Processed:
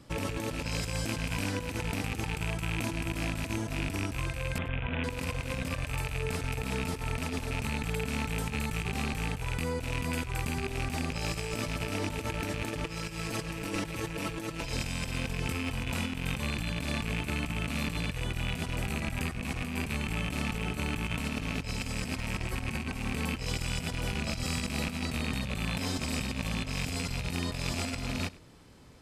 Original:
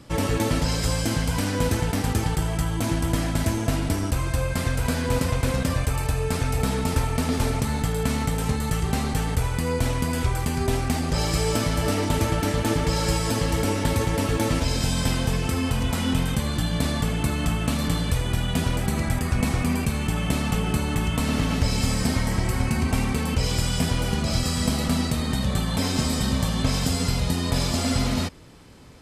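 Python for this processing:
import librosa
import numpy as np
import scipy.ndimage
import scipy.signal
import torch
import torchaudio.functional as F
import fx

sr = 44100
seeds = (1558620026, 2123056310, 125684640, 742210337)

y = fx.rattle_buzz(x, sr, strikes_db=-25.0, level_db=-15.0)
y = fx.steep_lowpass(y, sr, hz=3500.0, slope=96, at=(4.58, 5.04))
y = fx.comb(y, sr, ms=6.1, depth=0.81, at=(12.84, 14.72))
y = fx.over_compress(y, sr, threshold_db=-24.0, ratio=-0.5)
y = y + 10.0 ** (-21.5 / 20.0) * np.pad(y, (int(100 * sr / 1000.0), 0))[:len(y)]
y = y * 10.0 ** (-8.5 / 20.0)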